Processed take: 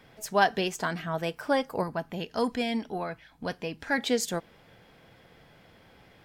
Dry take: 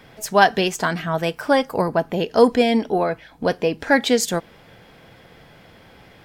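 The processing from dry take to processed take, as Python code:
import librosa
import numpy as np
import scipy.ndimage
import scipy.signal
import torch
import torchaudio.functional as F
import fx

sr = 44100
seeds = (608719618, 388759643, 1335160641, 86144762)

y = fx.peak_eq(x, sr, hz=460.0, db=-7.5, octaves=1.4, at=(1.83, 3.98))
y = F.gain(torch.from_numpy(y), -8.5).numpy()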